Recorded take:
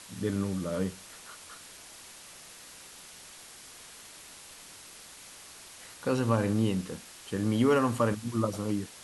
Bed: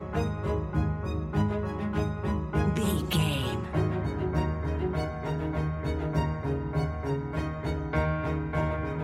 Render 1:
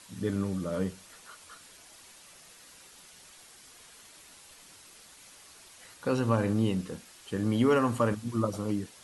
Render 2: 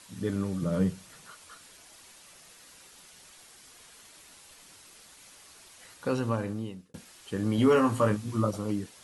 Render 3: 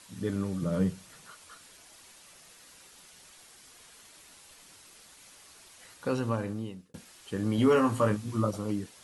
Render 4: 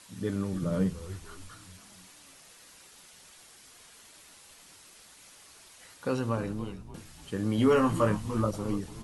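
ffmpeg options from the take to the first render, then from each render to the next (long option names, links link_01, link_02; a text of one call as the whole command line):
ffmpeg -i in.wav -af "afftdn=noise_reduction=6:noise_floor=-50" out.wav
ffmpeg -i in.wav -filter_complex "[0:a]asettb=1/sr,asplit=3[link_01][link_02][link_03];[link_01]atrim=end=0.624[link_04];[link_02]atrim=start=0.62:end=1.31,asetpts=PTS-STARTPTS,afade=type=in:duration=0.004:curve=qsin,afade=type=out:start_time=0.686:duration=0.004:curve=qsin,equalizer=frequency=140:width=1.5:gain=12.5[link_05];[link_03]atrim=start=1.306[link_06];[link_04][link_05]acrossfade=duration=0.004:curve1=hsin:curve2=qsin[link_07];[link_07][link_06]acrossfade=duration=0.004:curve1=qsin:curve2=hsin,asettb=1/sr,asplit=3[link_08][link_09][link_10];[link_08]atrim=end=7.564[link_11];[link_09]atrim=start=7.56:end=8.51,asetpts=PTS-STARTPTS,afade=type=in:duration=0.004:curve=qsin,afade=type=out:start_time=0.946:duration=0.004:curve=qsin,asplit=2[link_12][link_13];[link_13]adelay=19,volume=-4dB[link_14];[link_12][link_14]amix=inputs=2:normalize=0,atrim=end_sample=41895[link_15];[link_10]atrim=start=8.506[link_16];[link_11][link_15]acrossfade=duration=0.004:curve1=hsin:curve2=qsin[link_17];[link_17][link_16]acrossfade=duration=0.004:curve1=qsin:curve2=hsin,asplit=2[link_18][link_19];[link_18]atrim=end=6.94,asetpts=PTS-STARTPTS,afade=type=out:start_time=6.06:duration=0.88[link_20];[link_19]atrim=start=6.94,asetpts=PTS-STARTPTS,afade=type=in:duration=0.004:curve=hsin[link_21];[link_20][link_21]concat=n=2:v=0:a=1" out.wav
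ffmpeg -i in.wav -af "volume=-1dB" out.wav
ffmpeg -i in.wav -filter_complex "[0:a]asplit=6[link_01][link_02][link_03][link_04][link_05][link_06];[link_02]adelay=293,afreqshift=-93,volume=-13dB[link_07];[link_03]adelay=586,afreqshift=-186,volume=-19.7dB[link_08];[link_04]adelay=879,afreqshift=-279,volume=-26.5dB[link_09];[link_05]adelay=1172,afreqshift=-372,volume=-33.2dB[link_10];[link_06]adelay=1465,afreqshift=-465,volume=-40dB[link_11];[link_01][link_07][link_08][link_09][link_10][link_11]amix=inputs=6:normalize=0" out.wav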